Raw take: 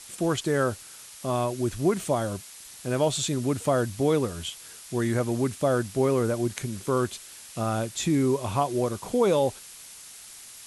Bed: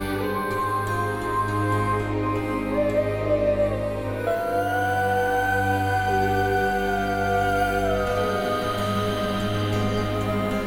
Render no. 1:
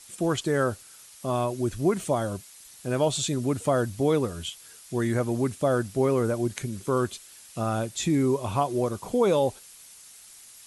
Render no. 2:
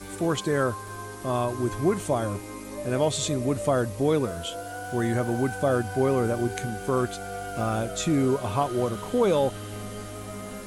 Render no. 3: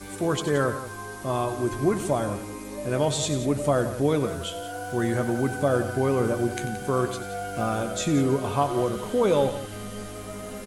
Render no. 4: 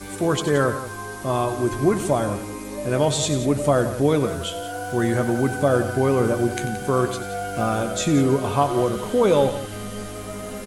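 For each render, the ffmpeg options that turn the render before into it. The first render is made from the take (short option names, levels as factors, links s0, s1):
-af "afftdn=nr=6:nf=-46"
-filter_complex "[1:a]volume=0.224[s0];[0:a][s0]amix=inputs=2:normalize=0"
-filter_complex "[0:a]asplit=2[s0][s1];[s1]adelay=14,volume=0.266[s2];[s0][s2]amix=inputs=2:normalize=0,asplit=2[s3][s4];[s4]aecho=0:1:93|174:0.224|0.224[s5];[s3][s5]amix=inputs=2:normalize=0"
-af "volume=1.58"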